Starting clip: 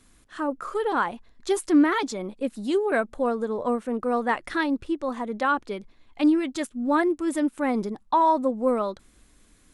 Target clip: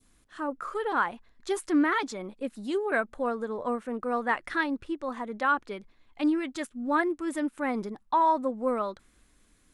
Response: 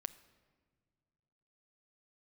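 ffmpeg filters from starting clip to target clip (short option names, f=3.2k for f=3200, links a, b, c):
-af "adynamicequalizer=threshold=0.0141:dfrequency=1600:dqfactor=0.87:tfrequency=1600:tqfactor=0.87:attack=5:release=100:ratio=0.375:range=3:mode=boostabove:tftype=bell,volume=-6dB"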